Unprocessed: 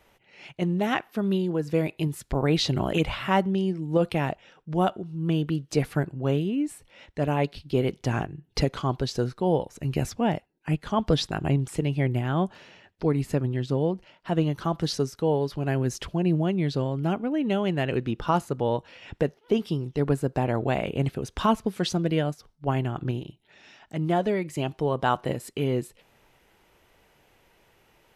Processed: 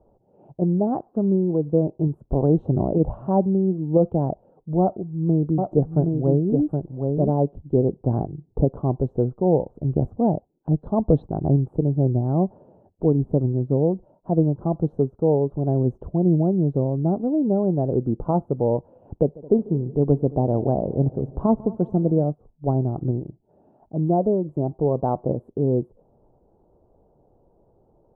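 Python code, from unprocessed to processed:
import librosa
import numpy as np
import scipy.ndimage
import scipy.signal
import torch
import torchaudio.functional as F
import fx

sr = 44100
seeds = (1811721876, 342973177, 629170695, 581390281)

y = fx.echo_single(x, sr, ms=769, db=-4.5, at=(4.81, 7.3))
y = fx.lowpass_res(y, sr, hz=4000.0, q=13.0, at=(10.24, 11.23))
y = fx.echo_heads(y, sr, ms=73, heads='second and third', feedback_pct=54, wet_db=-22, at=(19.17, 22.24))
y = scipy.signal.sosfilt(scipy.signal.cheby2(4, 50, 1900.0, 'lowpass', fs=sr, output='sos'), y)
y = y * 10.0 ** (5.0 / 20.0)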